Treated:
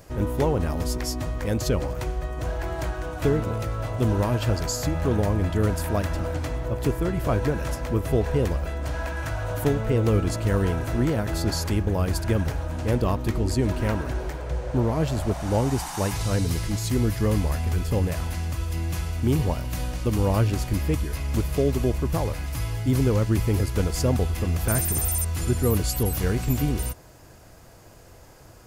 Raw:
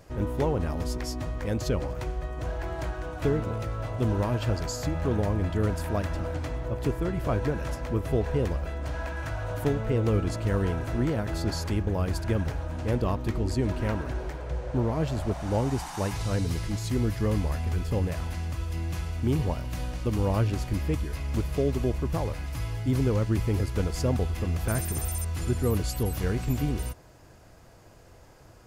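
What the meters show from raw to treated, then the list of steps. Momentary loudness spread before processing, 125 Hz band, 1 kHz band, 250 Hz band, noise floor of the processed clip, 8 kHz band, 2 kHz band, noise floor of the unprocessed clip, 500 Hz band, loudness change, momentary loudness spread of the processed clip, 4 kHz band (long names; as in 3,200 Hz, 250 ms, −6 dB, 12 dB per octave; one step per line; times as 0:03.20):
7 LU, +3.5 dB, +3.5 dB, +3.5 dB, −48 dBFS, +8.0 dB, +4.0 dB, −52 dBFS, +3.5 dB, +3.5 dB, 7 LU, +5.0 dB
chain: high-shelf EQ 7,900 Hz +8.5 dB
level +3.5 dB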